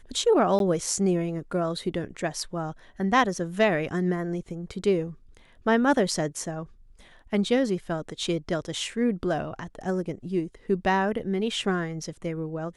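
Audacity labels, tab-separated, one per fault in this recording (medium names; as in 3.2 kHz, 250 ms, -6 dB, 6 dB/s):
0.590000	0.600000	dropout 12 ms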